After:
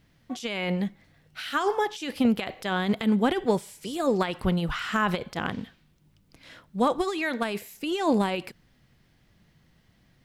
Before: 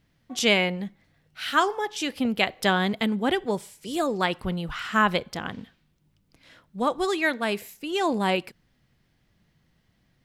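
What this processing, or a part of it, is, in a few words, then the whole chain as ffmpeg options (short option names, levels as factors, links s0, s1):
de-esser from a sidechain: -filter_complex "[0:a]asplit=2[s0][s1];[s1]highpass=5600,apad=whole_len=451652[s2];[s0][s2]sidechaincompress=threshold=0.00398:ratio=8:attack=3:release=38,volume=1.68"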